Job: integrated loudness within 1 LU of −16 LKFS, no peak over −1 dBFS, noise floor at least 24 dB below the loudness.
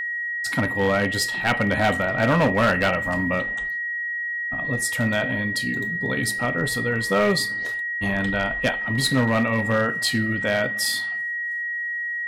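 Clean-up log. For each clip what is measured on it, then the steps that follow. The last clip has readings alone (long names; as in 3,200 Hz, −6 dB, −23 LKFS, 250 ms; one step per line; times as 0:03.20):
share of clipped samples 1.1%; peaks flattened at −14.0 dBFS; interfering tone 1,900 Hz; level of the tone −25 dBFS; integrated loudness −22.5 LKFS; sample peak −14.0 dBFS; target loudness −16.0 LKFS
→ clipped peaks rebuilt −14 dBFS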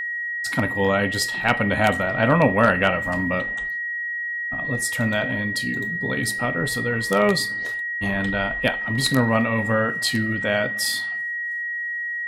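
share of clipped samples 0.0%; interfering tone 1,900 Hz; level of the tone −25 dBFS
→ notch filter 1,900 Hz, Q 30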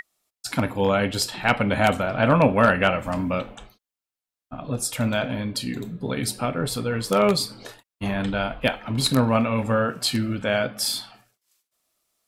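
interfering tone none found; integrated loudness −23.5 LKFS; sample peak −4.0 dBFS; target loudness −16.0 LKFS
→ level +7.5 dB
brickwall limiter −1 dBFS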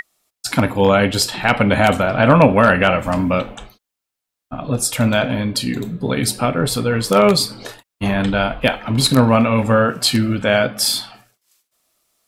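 integrated loudness −16.5 LKFS; sample peak −1.0 dBFS; background noise floor −83 dBFS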